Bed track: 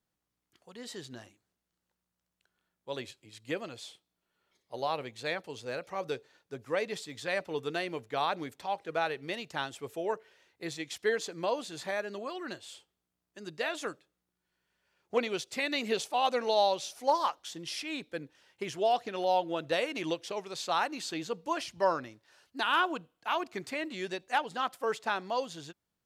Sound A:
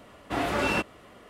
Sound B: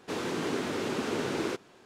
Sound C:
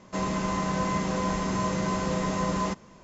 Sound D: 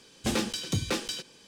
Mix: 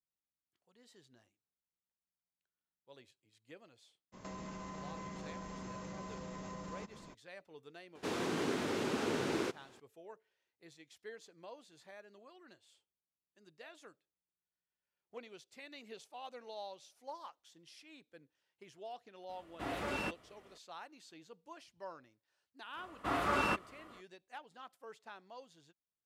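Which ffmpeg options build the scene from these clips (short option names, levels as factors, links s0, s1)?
-filter_complex "[1:a]asplit=2[s0][s1];[0:a]volume=0.1[s2];[3:a]acompressor=threshold=0.00891:ratio=6:attack=3.2:release=140:knee=1:detection=peak[s3];[s1]equalizer=f=1200:w=2.6:g=9.5[s4];[s3]atrim=end=3.03,asetpts=PTS-STARTPTS,volume=0.708,afade=t=in:d=0.02,afade=t=out:st=3.01:d=0.02,adelay=4120[s5];[2:a]atrim=end=1.85,asetpts=PTS-STARTPTS,volume=0.631,afade=t=in:d=0.004:c=hsin,afade=t=out:st=1.846:d=0.004:c=hsin,adelay=7950[s6];[s0]atrim=end=1.29,asetpts=PTS-STARTPTS,volume=0.251,afade=t=in:d=0.004:c=hsin,afade=t=out:st=1.286:d=0.004:c=hsin,adelay=19290[s7];[s4]atrim=end=1.29,asetpts=PTS-STARTPTS,volume=0.376,afade=t=in:d=0.05,afade=t=out:st=1.24:d=0.05,adelay=22740[s8];[s2][s5][s6][s7][s8]amix=inputs=5:normalize=0"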